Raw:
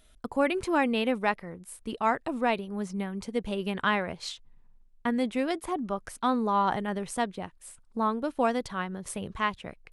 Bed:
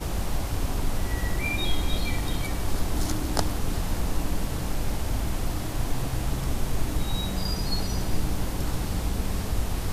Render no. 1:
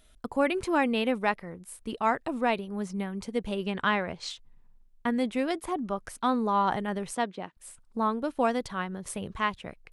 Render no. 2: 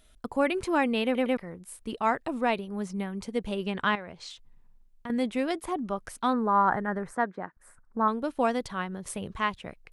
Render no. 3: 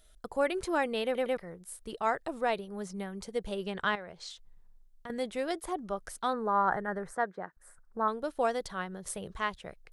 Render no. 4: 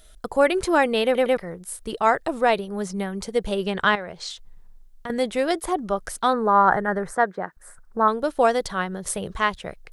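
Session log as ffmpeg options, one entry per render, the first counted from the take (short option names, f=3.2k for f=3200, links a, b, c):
-filter_complex "[0:a]asettb=1/sr,asplit=3[a][b][c];[a]atrim=end=3.644[d];[b]atrim=start=3.64:end=4.3,asetpts=PTS-STARTPTS,afade=t=in:d=0.004:c=qsin,afade=t=out:st=0.656:d=0.004:c=qsin,lowpass=f=8.3k:w=0.5412,lowpass=f=8.3k:w=1.3066[e];[c]atrim=start=4.296[f];[d][e]acrossfade=d=0.004:c1=hsin:c2=qsin[g];[g][f]acrossfade=d=0.004:c1=qsin:c2=hsin,asettb=1/sr,asplit=3[h][i][j];[h]atrim=end=7.154[k];[i]atrim=start=7.15:end=7.57,asetpts=PTS-STARTPTS,afade=t=in:d=0.004:c=qsin,afade=t=out:st=0.416:d=0.004:c=qsin,highpass=190,lowpass=5.6k[l];[j]atrim=start=7.566[m];[k][l]acrossfade=d=0.004:c1=hsin:c2=qsin[n];[n][m]acrossfade=d=0.004:c1=qsin:c2=hsin"
-filter_complex "[0:a]asettb=1/sr,asplit=3[a][b][c];[a]atrim=end=3.954[d];[b]atrim=start=3.95:end=5.1,asetpts=PTS-STARTPTS,afade=t=in:d=0.004:c=qsin,afade=t=out:st=1.146:d=0.004:c=qsin,acompressor=threshold=-43dB:ratio=2:attack=3.2:release=140:knee=1:detection=peak[e];[c]atrim=start=5.096[f];[d][e]acrossfade=d=0.004:c1=hsin:c2=qsin[g];[g][f]acrossfade=d=0.004:c1=qsin:c2=hsin,asettb=1/sr,asplit=3[h][i][j];[h]atrim=end=6.334[k];[i]atrim=start=6.33:end=8.08,asetpts=PTS-STARTPTS,afade=t=in:d=0.004:c=qsin,afade=t=out:st=1.746:d=0.004:c=qsin,highshelf=f=2.2k:t=q:w=3:g=-10.5[l];[j]atrim=start=8.076[m];[k][l]acrossfade=d=0.004:c1=hsin:c2=qsin[n];[n][m]acrossfade=d=0.004:c1=qsin:c2=hsin,asplit=4[o][p][q][r];[o]atrim=end=1.152[s];[p]atrim=start=1.038:end=1.152[t];[q]atrim=start=1.038:end=1.152[u];[r]atrim=start=1.368[v];[s][t]acrossfade=d=0.004:c1=hsin:c2=hsin[w];[w][u]acrossfade=d=0.004:c1=hsin:c2=hsin[x];[x][v]acrossfade=d=0.004:c1=hsin:c2=hsin"
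-af "equalizer=f=100:t=o:w=0.67:g=-11,equalizer=f=250:t=o:w=0.67:g=-11,equalizer=f=1k:t=o:w=0.67:g=-5,equalizer=f=2.5k:t=o:w=0.67:g=-7"
-af "volume=10.5dB"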